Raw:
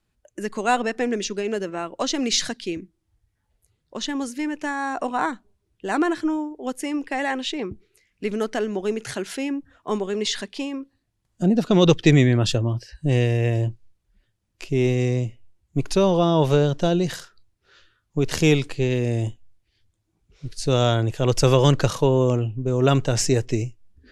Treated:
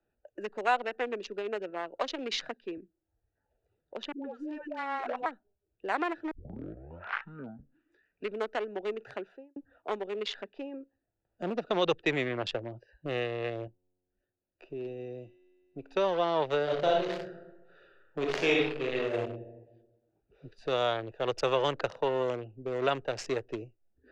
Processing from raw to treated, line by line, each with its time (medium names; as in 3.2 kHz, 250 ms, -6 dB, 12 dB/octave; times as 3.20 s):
4.12–5.26 s: phase dispersion highs, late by 134 ms, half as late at 540 Hz
6.31 s: tape start 1.98 s
9.10–9.56 s: studio fade out
13.67–15.97 s: feedback comb 91 Hz, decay 1.7 s
16.63–19.23 s: reverb throw, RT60 0.93 s, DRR -3.5 dB
whole clip: local Wiener filter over 41 samples; three-band isolator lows -22 dB, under 450 Hz, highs -22 dB, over 4.1 kHz; three bands compressed up and down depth 40%; trim -2 dB